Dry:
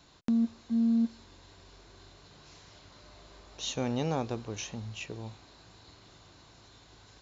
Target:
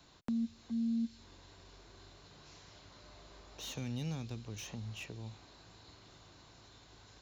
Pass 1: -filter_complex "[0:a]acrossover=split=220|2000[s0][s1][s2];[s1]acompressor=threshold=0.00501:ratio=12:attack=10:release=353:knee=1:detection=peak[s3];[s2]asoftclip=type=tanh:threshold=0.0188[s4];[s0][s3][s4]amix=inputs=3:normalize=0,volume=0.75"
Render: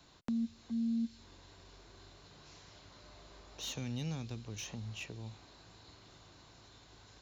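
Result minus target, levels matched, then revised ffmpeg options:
saturation: distortion -5 dB
-filter_complex "[0:a]acrossover=split=220|2000[s0][s1][s2];[s1]acompressor=threshold=0.00501:ratio=12:attack=10:release=353:knee=1:detection=peak[s3];[s2]asoftclip=type=tanh:threshold=0.00944[s4];[s0][s3][s4]amix=inputs=3:normalize=0,volume=0.75"

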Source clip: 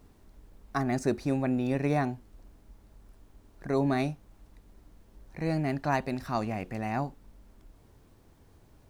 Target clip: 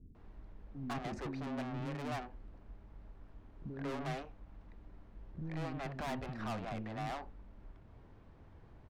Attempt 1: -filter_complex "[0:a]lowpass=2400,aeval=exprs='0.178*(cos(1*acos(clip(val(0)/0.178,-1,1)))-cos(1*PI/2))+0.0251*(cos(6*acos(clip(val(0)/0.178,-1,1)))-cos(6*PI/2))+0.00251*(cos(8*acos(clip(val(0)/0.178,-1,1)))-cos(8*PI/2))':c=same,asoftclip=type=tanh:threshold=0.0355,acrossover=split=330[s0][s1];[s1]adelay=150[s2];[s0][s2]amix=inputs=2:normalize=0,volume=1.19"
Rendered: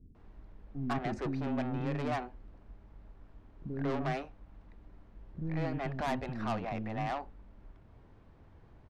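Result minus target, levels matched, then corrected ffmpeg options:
saturation: distortion -5 dB
-filter_complex "[0:a]lowpass=2400,aeval=exprs='0.178*(cos(1*acos(clip(val(0)/0.178,-1,1)))-cos(1*PI/2))+0.0251*(cos(6*acos(clip(val(0)/0.178,-1,1)))-cos(6*PI/2))+0.00251*(cos(8*acos(clip(val(0)/0.178,-1,1)))-cos(8*PI/2))':c=same,asoftclip=type=tanh:threshold=0.0126,acrossover=split=330[s0][s1];[s1]adelay=150[s2];[s0][s2]amix=inputs=2:normalize=0,volume=1.19"

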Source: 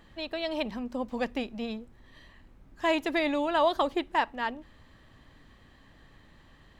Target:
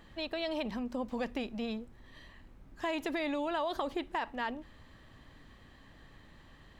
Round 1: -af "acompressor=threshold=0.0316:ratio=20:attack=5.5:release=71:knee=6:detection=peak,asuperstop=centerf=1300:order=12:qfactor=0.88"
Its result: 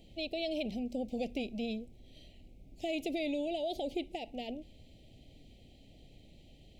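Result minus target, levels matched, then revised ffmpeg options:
1 kHz band -6.5 dB
-af "acompressor=threshold=0.0316:ratio=20:attack=5.5:release=71:knee=6:detection=peak"

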